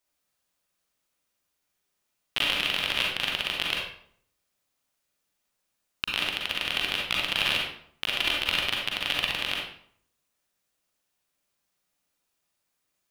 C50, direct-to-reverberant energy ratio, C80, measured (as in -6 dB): 0.0 dB, -2.5 dB, 5.5 dB